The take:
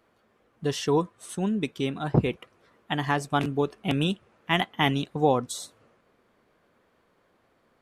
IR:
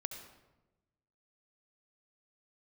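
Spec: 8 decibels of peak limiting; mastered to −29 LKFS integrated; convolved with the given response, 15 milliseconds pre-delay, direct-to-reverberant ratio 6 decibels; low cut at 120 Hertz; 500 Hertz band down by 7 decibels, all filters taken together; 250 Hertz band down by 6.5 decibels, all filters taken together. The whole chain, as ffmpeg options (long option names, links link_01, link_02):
-filter_complex "[0:a]highpass=120,equalizer=frequency=250:width_type=o:gain=-6.5,equalizer=frequency=500:width_type=o:gain=-6.5,alimiter=limit=-17dB:level=0:latency=1,asplit=2[link_01][link_02];[1:a]atrim=start_sample=2205,adelay=15[link_03];[link_02][link_03]afir=irnorm=-1:irlink=0,volume=-5dB[link_04];[link_01][link_04]amix=inputs=2:normalize=0,volume=3dB"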